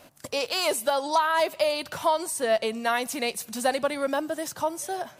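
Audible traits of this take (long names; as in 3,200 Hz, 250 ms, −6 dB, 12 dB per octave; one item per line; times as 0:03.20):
background noise floor −53 dBFS
spectral slope −3.0 dB per octave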